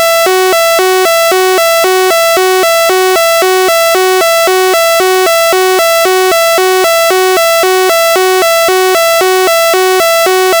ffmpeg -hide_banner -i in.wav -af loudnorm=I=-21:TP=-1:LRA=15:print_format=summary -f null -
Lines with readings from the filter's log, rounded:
Input Integrated:     -7.2 LUFS
Input True Peak:      -0.8 dBTP
Input LRA:             0.1 LU
Input Threshold:     -17.2 LUFS